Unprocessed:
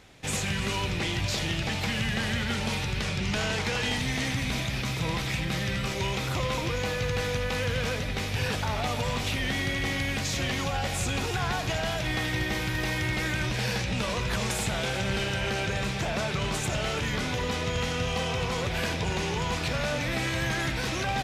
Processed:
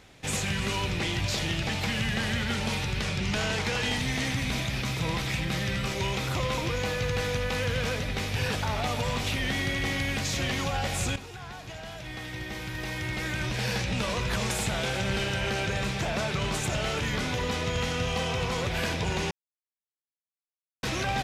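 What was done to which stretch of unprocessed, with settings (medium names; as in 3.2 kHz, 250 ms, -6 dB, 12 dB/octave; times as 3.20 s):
11.16–13.77 s: fade in quadratic, from -13 dB
19.31–20.83 s: mute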